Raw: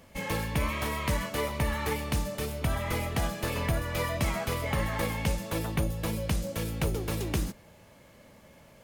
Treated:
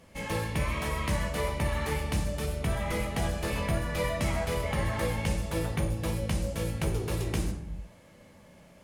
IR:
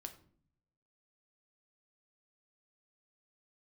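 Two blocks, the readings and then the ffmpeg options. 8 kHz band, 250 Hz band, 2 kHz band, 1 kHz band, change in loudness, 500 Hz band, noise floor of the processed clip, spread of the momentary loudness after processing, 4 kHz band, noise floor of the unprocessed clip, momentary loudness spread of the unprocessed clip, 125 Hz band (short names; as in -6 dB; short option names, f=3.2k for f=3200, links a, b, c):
-1.0 dB, 0.0 dB, -1.0 dB, -1.0 dB, 0.0 dB, +1.0 dB, -55 dBFS, 3 LU, -1.5 dB, -56 dBFS, 3 LU, +0.5 dB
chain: -filter_complex "[1:a]atrim=start_sample=2205,afade=t=out:st=0.28:d=0.01,atrim=end_sample=12789,asetrate=23373,aresample=44100[a];[0:a][a]afir=irnorm=-1:irlink=0"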